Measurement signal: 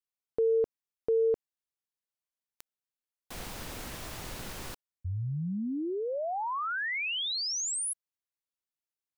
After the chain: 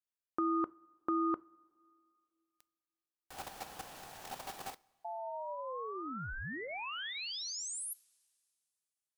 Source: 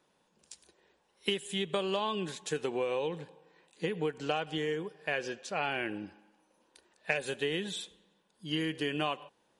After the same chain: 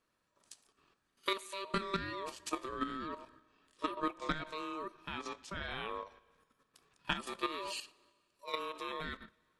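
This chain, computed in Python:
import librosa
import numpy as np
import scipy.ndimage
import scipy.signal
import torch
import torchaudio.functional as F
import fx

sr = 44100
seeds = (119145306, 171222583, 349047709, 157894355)

y = fx.level_steps(x, sr, step_db=10)
y = y * np.sin(2.0 * np.pi * 780.0 * np.arange(len(y)) / sr)
y = fx.notch(y, sr, hz=2100.0, q=20.0)
y = fx.rev_double_slope(y, sr, seeds[0], early_s=0.32, late_s=2.4, knee_db=-18, drr_db=17.5)
y = F.gain(torch.from_numpy(y), 2.0).numpy()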